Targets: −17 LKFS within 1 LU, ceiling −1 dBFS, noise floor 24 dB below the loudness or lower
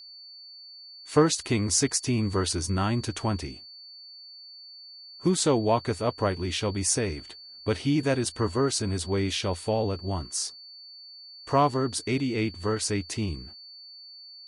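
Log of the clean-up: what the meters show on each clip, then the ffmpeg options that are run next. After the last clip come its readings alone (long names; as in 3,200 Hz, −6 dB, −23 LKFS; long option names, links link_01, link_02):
interfering tone 4,500 Hz; level of the tone −44 dBFS; integrated loudness −27.0 LKFS; sample peak −9.5 dBFS; target loudness −17.0 LKFS
→ -af "bandreject=frequency=4500:width=30"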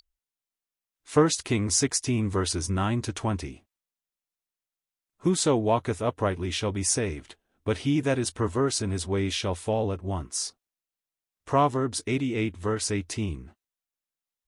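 interfering tone none found; integrated loudness −27.0 LKFS; sample peak −9.5 dBFS; target loudness −17.0 LKFS
→ -af "volume=10dB,alimiter=limit=-1dB:level=0:latency=1"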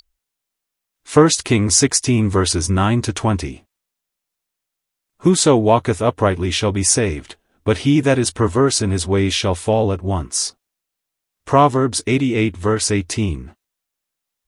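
integrated loudness −17.0 LKFS; sample peak −1.0 dBFS; background noise floor −82 dBFS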